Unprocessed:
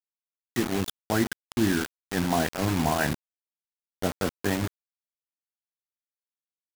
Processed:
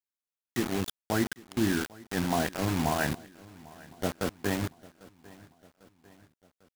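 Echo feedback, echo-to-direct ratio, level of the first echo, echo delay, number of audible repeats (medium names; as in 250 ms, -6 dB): 54%, -20.5 dB, -22.0 dB, 798 ms, 3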